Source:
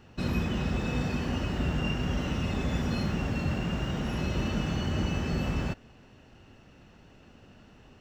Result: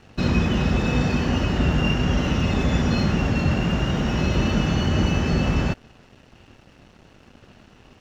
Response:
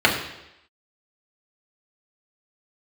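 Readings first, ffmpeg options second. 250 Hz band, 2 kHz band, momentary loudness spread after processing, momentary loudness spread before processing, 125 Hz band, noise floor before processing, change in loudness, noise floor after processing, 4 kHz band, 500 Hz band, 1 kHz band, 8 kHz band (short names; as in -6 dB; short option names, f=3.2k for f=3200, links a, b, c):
+8.5 dB, +9.0 dB, 2 LU, 2 LU, +8.5 dB, -55 dBFS, +8.5 dB, -53 dBFS, +9.0 dB, +9.0 dB, +8.5 dB, +8.0 dB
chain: -af "aresample=16000,aresample=44100,aeval=exprs='sgn(val(0))*max(abs(val(0))-0.00126,0)':c=same,volume=9dB"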